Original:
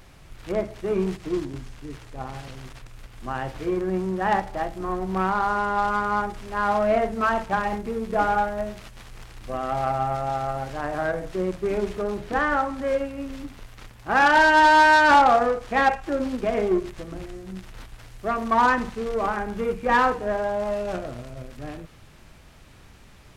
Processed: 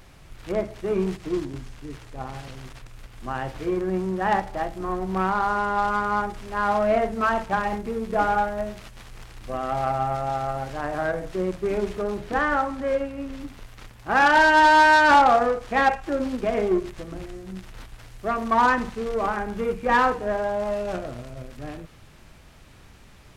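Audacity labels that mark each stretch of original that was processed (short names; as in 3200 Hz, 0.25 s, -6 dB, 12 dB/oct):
12.760000	13.410000	high shelf 4600 Hz -4.5 dB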